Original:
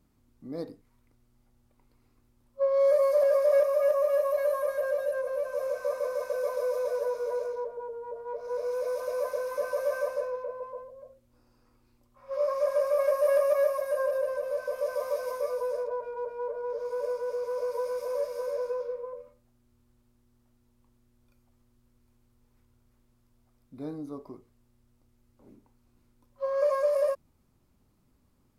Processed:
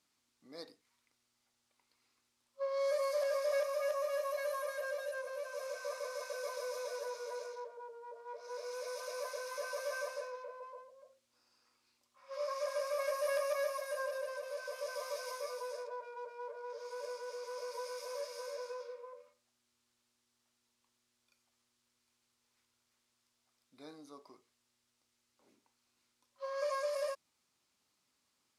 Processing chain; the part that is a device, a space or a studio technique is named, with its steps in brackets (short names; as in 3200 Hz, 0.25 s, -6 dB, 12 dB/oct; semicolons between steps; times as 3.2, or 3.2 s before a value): piezo pickup straight into a mixer (LPF 5200 Hz 12 dB/oct; differentiator); gain +10.5 dB